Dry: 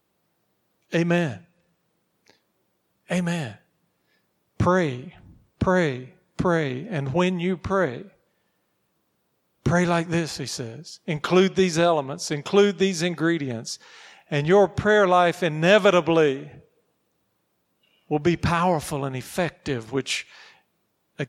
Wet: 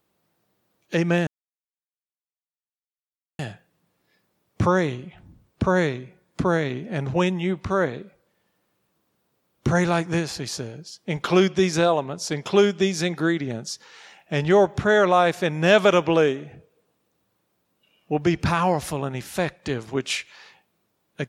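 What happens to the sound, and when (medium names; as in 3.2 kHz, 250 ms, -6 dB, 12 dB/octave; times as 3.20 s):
1.27–3.39 s: mute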